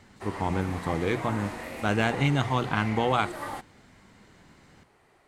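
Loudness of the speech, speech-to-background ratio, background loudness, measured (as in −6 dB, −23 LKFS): −28.0 LKFS, 9.5 dB, −37.5 LKFS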